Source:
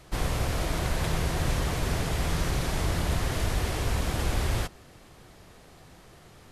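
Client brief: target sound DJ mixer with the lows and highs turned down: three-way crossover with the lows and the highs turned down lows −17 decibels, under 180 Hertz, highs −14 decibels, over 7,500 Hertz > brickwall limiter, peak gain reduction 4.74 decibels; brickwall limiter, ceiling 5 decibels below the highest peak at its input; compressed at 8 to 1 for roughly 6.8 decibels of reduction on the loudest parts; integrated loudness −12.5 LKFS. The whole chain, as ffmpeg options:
ffmpeg -i in.wav -filter_complex "[0:a]acompressor=threshold=-29dB:ratio=8,alimiter=level_in=2.5dB:limit=-24dB:level=0:latency=1,volume=-2.5dB,acrossover=split=180 7500:gain=0.141 1 0.2[link_01][link_02][link_03];[link_01][link_02][link_03]amix=inputs=3:normalize=0,volume=30dB,alimiter=limit=-3dB:level=0:latency=1" out.wav

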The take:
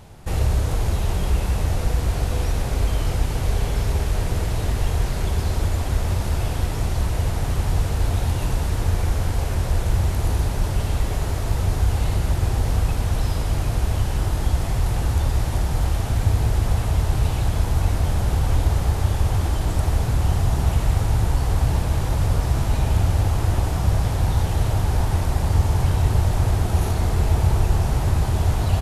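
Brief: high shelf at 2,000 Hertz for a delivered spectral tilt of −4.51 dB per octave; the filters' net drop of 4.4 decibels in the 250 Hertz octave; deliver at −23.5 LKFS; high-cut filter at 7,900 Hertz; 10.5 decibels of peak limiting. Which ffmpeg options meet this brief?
ffmpeg -i in.wav -af "lowpass=7900,equalizer=frequency=250:width_type=o:gain=-8,highshelf=frequency=2000:gain=7,volume=3.5dB,alimiter=limit=-13.5dB:level=0:latency=1" out.wav

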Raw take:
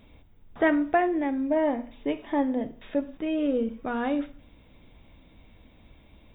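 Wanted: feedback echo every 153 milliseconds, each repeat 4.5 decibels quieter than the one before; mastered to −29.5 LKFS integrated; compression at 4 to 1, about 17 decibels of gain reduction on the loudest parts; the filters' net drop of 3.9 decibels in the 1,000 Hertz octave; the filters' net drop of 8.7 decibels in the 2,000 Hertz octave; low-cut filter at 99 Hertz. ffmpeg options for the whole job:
ffmpeg -i in.wav -af "highpass=99,equalizer=frequency=1000:width_type=o:gain=-4.5,equalizer=frequency=2000:width_type=o:gain=-9,acompressor=threshold=-42dB:ratio=4,aecho=1:1:153|306|459|612|765|918|1071|1224|1377:0.596|0.357|0.214|0.129|0.0772|0.0463|0.0278|0.0167|0.01,volume=12dB" out.wav

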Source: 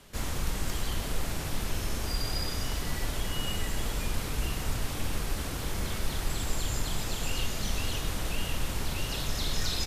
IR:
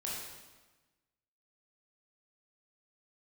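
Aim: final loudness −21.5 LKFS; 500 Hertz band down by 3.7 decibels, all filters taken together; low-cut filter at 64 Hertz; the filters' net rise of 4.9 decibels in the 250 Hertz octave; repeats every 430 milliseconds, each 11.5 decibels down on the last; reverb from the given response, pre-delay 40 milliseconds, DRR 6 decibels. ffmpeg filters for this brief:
-filter_complex "[0:a]highpass=64,equalizer=frequency=250:width_type=o:gain=8.5,equalizer=frequency=500:width_type=o:gain=-8,aecho=1:1:430|860|1290:0.266|0.0718|0.0194,asplit=2[link_01][link_02];[1:a]atrim=start_sample=2205,adelay=40[link_03];[link_02][link_03]afir=irnorm=-1:irlink=0,volume=-8dB[link_04];[link_01][link_04]amix=inputs=2:normalize=0,volume=11dB"

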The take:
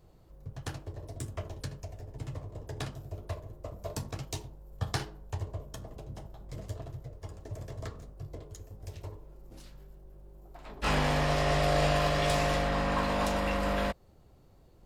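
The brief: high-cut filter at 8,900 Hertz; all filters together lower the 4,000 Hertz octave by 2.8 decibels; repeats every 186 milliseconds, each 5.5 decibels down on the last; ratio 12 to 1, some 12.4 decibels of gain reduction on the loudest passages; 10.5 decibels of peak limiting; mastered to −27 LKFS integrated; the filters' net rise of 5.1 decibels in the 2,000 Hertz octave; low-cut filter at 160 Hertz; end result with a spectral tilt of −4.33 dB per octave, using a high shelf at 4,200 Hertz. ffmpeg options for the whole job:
ffmpeg -i in.wav -af "highpass=160,lowpass=8900,equalizer=frequency=2000:width_type=o:gain=8.5,equalizer=frequency=4000:width_type=o:gain=-3,highshelf=frequency=4200:gain=-8,acompressor=threshold=-36dB:ratio=12,alimiter=level_in=8.5dB:limit=-24dB:level=0:latency=1,volume=-8.5dB,aecho=1:1:186|372|558|744|930|1116|1302:0.531|0.281|0.149|0.079|0.0419|0.0222|0.0118,volume=17dB" out.wav

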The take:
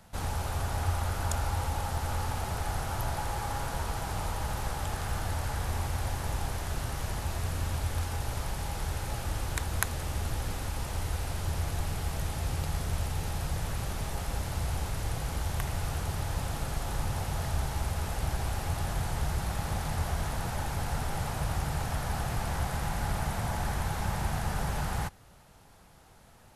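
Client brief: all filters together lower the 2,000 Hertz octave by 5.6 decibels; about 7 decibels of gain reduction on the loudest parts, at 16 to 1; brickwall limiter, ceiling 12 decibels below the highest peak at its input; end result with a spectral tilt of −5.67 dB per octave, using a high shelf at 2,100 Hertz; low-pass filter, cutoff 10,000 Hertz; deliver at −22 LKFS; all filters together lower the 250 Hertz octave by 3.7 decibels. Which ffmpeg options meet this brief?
ffmpeg -i in.wav -af "lowpass=10000,equalizer=frequency=250:width_type=o:gain=-6.5,equalizer=frequency=2000:width_type=o:gain=-3.5,highshelf=frequency=2100:gain=-7,acompressor=threshold=-33dB:ratio=16,volume=19dB,alimiter=limit=-11dB:level=0:latency=1" out.wav

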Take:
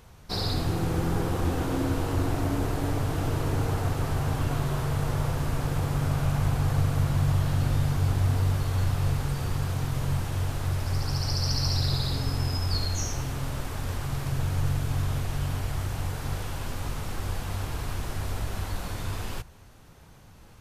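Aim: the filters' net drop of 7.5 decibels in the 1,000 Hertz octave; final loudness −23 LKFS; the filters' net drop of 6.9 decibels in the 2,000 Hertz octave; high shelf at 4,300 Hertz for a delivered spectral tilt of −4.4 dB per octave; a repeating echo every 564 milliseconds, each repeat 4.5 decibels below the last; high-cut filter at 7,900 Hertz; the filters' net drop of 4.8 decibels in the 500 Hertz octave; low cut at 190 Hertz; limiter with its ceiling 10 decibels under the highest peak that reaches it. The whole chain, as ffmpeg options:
ffmpeg -i in.wav -af "highpass=190,lowpass=7900,equalizer=frequency=500:width_type=o:gain=-4,equalizer=frequency=1000:width_type=o:gain=-7,equalizer=frequency=2000:width_type=o:gain=-7.5,highshelf=frequency=4300:gain=5,alimiter=level_in=3dB:limit=-24dB:level=0:latency=1,volume=-3dB,aecho=1:1:564|1128|1692|2256|2820|3384|3948|4512|5076:0.596|0.357|0.214|0.129|0.0772|0.0463|0.0278|0.0167|0.01,volume=12dB" out.wav

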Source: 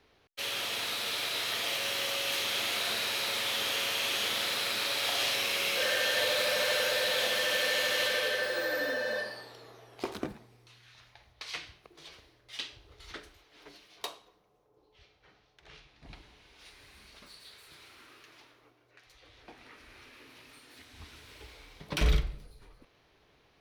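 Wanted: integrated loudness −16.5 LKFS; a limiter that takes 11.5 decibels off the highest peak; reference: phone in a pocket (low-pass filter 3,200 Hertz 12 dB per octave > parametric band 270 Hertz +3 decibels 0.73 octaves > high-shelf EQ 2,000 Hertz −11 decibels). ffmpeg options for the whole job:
ffmpeg -i in.wav -af "alimiter=level_in=3dB:limit=-24dB:level=0:latency=1,volume=-3dB,lowpass=3200,equalizer=frequency=270:width_type=o:width=0.73:gain=3,highshelf=frequency=2000:gain=-11,volume=25dB" out.wav

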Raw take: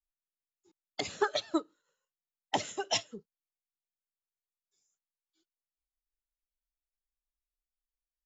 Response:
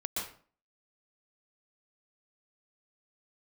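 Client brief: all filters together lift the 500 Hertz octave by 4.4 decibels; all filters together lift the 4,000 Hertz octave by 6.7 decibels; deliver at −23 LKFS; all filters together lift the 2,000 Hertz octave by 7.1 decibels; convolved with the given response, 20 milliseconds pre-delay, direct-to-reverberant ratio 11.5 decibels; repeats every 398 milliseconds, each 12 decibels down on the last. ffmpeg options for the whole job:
-filter_complex "[0:a]equalizer=frequency=500:width_type=o:gain=5.5,equalizer=frequency=2000:width_type=o:gain=7,equalizer=frequency=4000:width_type=o:gain=6.5,aecho=1:1:398|796|1194:0.251|0.0628|0.0157,asplit=2[link_01][link_02];[1:a]atrim=start_sample=2205,adelay=20[link_03];[link_02][link_03]afir=irnorm=-1:irlink=0,volume=-15dB[link_04];[link_01][link_04]amix=inputs=2:normalize=0,volume=6.5dB"

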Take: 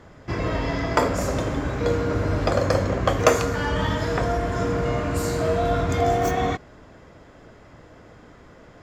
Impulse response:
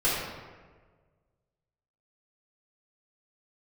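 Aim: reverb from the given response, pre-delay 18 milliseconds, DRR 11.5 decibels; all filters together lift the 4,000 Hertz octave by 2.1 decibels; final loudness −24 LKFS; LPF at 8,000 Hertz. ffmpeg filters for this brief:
-filter_complex "[0:a]lowpass=8000,equalizer=frequency=4000:width_type=o:gain=3,asplit=2[link_01][link_02];[1:a]atrim=start_sample=2205,adelay=18[link_03];[link_02][link_03]afir=irnorm=-1:irlink=0,volume=-24.5dB[link_04];[link_01][link_04]amix=inputs=2:normalize=0,volume=-1dB"

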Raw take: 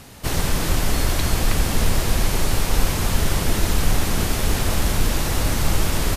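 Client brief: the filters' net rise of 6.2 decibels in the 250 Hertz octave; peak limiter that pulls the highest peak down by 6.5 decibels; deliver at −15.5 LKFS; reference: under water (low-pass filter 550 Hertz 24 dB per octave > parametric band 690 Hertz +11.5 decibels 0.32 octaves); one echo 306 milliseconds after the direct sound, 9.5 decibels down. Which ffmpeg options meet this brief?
ffmpeg -i in.wav -af "equalizer=frequency=250:width_type=o:gain=8,alimiter=limit=-11dB:level=0:latency=1,lowpass=frequency=550:width=0.5412,lowpass=frequency=550:width=1.3066,equalizer=frequency=690:width_type=o:width=0.32:gain=11.5,aecho=1:1:306:0.335,volume=8.5dB" out.wav

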